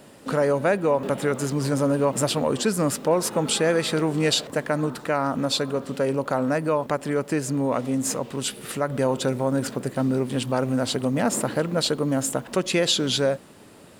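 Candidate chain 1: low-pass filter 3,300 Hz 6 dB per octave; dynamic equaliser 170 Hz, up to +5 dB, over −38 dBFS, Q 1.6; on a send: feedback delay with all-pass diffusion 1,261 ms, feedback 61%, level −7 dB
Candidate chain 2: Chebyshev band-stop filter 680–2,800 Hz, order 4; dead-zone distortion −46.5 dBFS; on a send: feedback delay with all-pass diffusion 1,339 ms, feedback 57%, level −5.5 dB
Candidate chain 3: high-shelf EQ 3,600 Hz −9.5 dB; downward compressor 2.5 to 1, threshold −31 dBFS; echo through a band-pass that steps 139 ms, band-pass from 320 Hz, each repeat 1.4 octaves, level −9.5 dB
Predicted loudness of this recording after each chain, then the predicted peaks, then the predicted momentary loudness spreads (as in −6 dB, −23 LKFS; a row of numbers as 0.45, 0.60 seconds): −22.5, −24.5, −32.0 LKFS; −7.5, −9.0, −17.0 dBFS; 4, 4, 3 LU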